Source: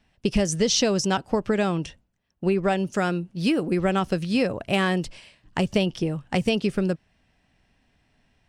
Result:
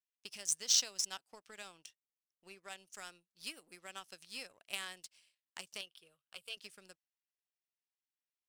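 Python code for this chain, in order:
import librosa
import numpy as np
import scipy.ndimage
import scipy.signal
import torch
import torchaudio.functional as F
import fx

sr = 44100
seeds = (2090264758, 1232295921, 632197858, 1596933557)

y = np.diff(x, prepend=0.0)
y = fx.fixed_phaser(y, sr, hz=1300.0, stages=8, at=(5.81, 6.57))
y = fx.power_curve(y, sr, exponent=1.4)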